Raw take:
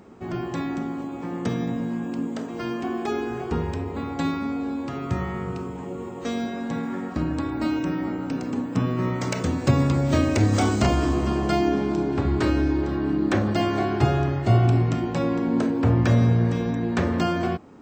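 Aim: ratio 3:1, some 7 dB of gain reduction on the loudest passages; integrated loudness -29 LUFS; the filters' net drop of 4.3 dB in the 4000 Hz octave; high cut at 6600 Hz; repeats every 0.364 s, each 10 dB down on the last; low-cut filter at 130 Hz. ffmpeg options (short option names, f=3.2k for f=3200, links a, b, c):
-af "highpass=130,lowpass=6.6k,equalizer=f=4k:t=o:g=-5.5,acompressor=threshold=-26dB:ratio=3,aecho=1:1:364|728|1092|1456:0.316|0.101|0.0324|0.0104,volume=0.5dB"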